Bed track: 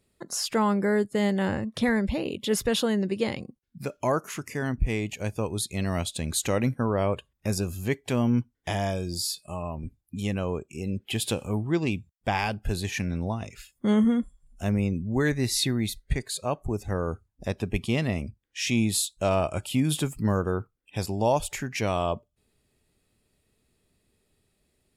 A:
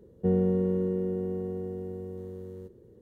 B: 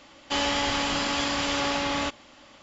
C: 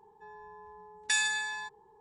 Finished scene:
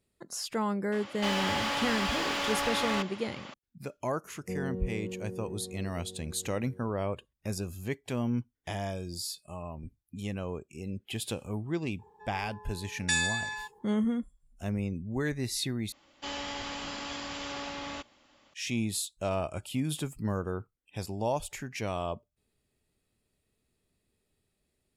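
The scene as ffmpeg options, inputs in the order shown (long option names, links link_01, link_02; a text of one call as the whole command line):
ffmpeg -i bed.wav -i cue0.wav -i cue1.wav -i cue2.wav -filter_complex "[2:a]asplit=2[link_01][link_02];[0:a]volume=-7dB[link_03];[link_01]asplit=2[link_04][link_05];[link_05]highpass=frequency=720:poles=1,volume=25dB,asoftclip=type=tanh:threshold=-13dB[link_06];[link_04][link_06]amix=inputs=2:normalize=0,lowpass=frequency=2600:poles=1,volume=-6dB[link_07];[link_03]asplit=2[link_08][link_09];[link_08]atrim=end=15.924[link_10];[link_02]atrim=end=2.62,asetpts=PTS-STARTPTS,volume=-11.5dB[link_11];[link_09]atrim=start=18.536[link_12];[link_07]atrim=end=2.62,asetpts=PTS-STARTPTS,volume=-10dB,afade=type=in:duration=0.004:curve=hsin,afade=type=out:start_time=2.616:duration=0.004:curve=hsin,adelay=920[link_13];[1:a]atrim=end=3.01,asetpts=PTS-STARTPTS,volume=-11dB,afade=type=in:duration=0.004:curve=hsin,afade=type=out:start_time=3.006:duration=0.004:curve=hsin,adelay=4240[link_14];[3:a]atrim=end=2,asetpts=PTS-STARTPTS,afade=type=in:duration=0.004:curve=hsin,afade=type=out:start_time=1.996:duration=0.004:curve=hsin,adelay=11990[link_15];[link_10][link_11]acrossfade=duration=0.004:curve1=hsin:curve2=hsin[link_16];[link_16][link_12]acrossfade=duration=0.004:curve1=hsin:curve2=hsin[link_17];[link_17][link_13][link_14][link_15]amix=inputs=4:normalize=0" out.wav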